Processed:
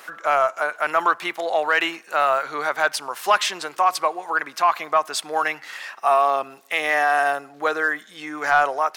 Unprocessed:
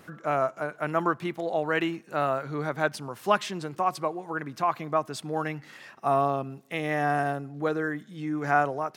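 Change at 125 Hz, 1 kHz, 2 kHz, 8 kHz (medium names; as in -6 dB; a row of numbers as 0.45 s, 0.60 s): under -15 dB, +8.0 dB, +10.5 dB, +12.5 dB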